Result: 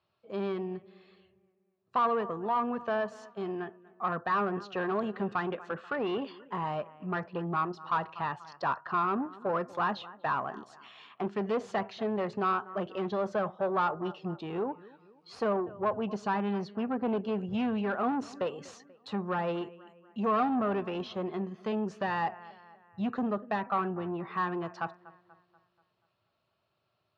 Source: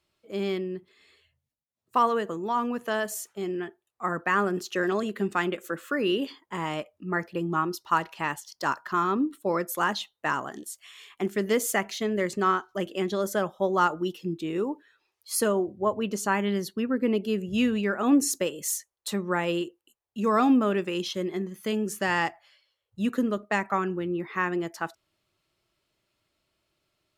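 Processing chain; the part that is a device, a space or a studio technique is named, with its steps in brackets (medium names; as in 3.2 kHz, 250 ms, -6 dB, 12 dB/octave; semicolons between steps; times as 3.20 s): analogue delay pedal into a guitar amplifier (bucket-brigade echo 241 ms, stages 4096, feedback 47%, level -23 dB; valve stage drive 24 dB, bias 0.2; cabinet simulation 100–4000 Hz, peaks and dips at 110 Hz +6 dB, 310 Hz -9 dB, 730 Hz +5 dB, 1.1 kHz +4 dB, 2.1 kHz -8 dB, 3.3 kHz -5 dB); dynamic bell 5 kHz, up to -6 dB, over -50 dBFS, Q 0.76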